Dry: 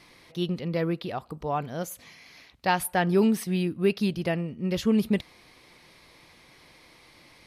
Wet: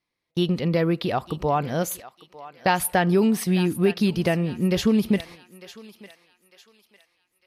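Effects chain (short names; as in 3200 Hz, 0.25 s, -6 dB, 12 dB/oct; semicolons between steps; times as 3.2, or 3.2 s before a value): gate -44 dBFS, range -37 dB; compressor 2.5:1, threshold -28 dBFS, peak gain reduction 8 dB; on a send: thinning echo 0.902 s, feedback 40%, high-pass 800 Hz, level -14.5 dB; on the sum: gain +9 dB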